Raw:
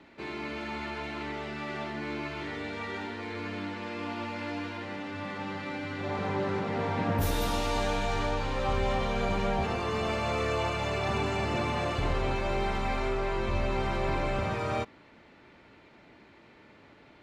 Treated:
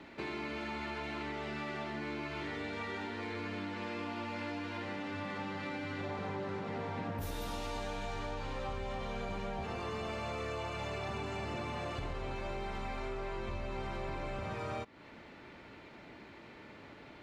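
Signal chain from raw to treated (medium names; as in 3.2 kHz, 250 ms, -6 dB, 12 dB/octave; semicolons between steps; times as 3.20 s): compression, threshold -40 dBFS, peak gain reduction 15 dB; trim +3 dB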